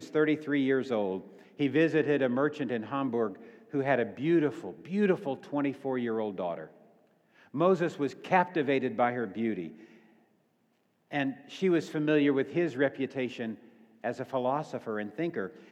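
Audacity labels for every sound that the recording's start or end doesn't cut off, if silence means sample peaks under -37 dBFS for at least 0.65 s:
7.540000	9.680000	sound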